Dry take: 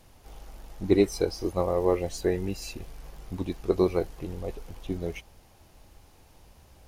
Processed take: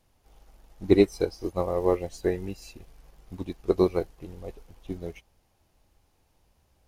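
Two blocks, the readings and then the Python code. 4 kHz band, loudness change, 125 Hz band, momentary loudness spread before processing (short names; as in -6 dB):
-2.5 dB, +1.5 dB, -1.0 dB, 18 LU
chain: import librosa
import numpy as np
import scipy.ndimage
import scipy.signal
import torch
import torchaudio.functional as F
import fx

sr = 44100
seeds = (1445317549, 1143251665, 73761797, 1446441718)

y = fx.upward_expand(x, sr, threshold_db=-46.0, expansion=1.5)
y = y * librosa.db_to_amplitude(3.0)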